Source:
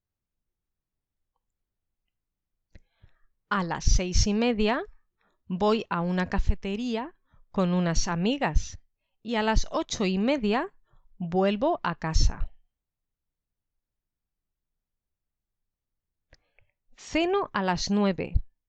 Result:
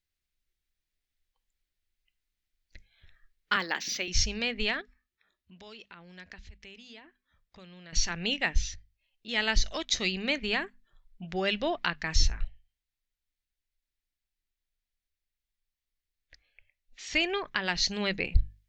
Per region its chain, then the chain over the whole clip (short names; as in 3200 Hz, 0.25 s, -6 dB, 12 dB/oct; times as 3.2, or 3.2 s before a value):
3.56–4.08 HPF 230 Hz 24 dB/oct + dynamic EQ 6000 Hz, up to -7 dB, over -46 dBFS, Q 1.4 + decimation joined by straight lines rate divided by 2×
4.81–7.93 HPF 42 Hz + compressor 2.5:1, threshold -45 dBFS
whole clip: graphic EQ 125/250/500/1000/2000/4000 Hz -11/-5/-5/-10/+7/+6 dB; vocal rider 0.5 s; notches 50/100/150/200/250 Hz